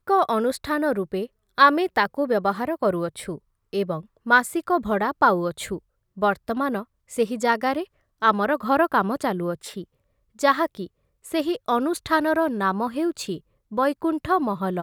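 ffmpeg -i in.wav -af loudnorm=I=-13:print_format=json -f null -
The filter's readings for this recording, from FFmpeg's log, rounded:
"input_i" : "-23.5",
"input_tp" : "-4.0",
"input_lra" : "1.5",
"input_thresh" : "-33.8",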